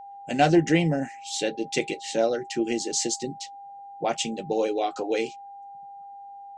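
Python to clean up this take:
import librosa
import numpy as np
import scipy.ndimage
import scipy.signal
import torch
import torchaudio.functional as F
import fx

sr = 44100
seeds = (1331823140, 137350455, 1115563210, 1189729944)

y = fx.notch(x, sr, hz=800.0, q=30.0)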